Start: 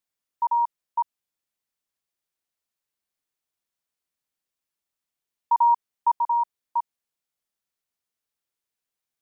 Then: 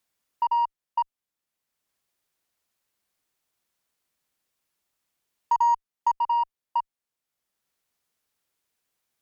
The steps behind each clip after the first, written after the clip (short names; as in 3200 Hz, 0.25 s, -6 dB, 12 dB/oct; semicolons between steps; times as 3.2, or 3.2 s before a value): added harmonics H 2 -33 dB, 7 -29 dB, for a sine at -13.5 dBFS; three-band squash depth 40%; gain -1 dB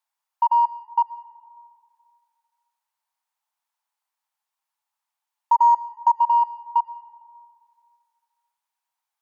ladder high-pass 810 Hz, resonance 70%; reverb RT60 2.2 s, pre-delay 60 ms, DRR 17 dB; gain +4.5 dB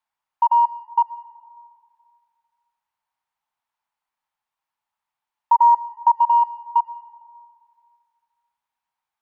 tone controls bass +6 dB, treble -10 dB; gain +2 dB